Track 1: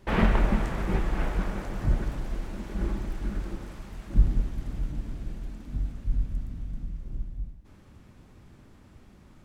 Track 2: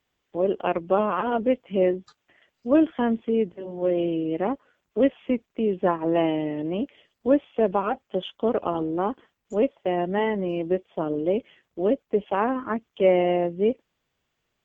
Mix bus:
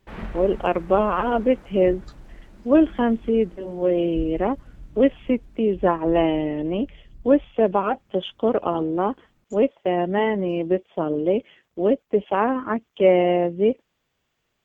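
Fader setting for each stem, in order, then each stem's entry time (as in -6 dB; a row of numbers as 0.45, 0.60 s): -11.5, +3.0 dB; 0.00, 0.00 s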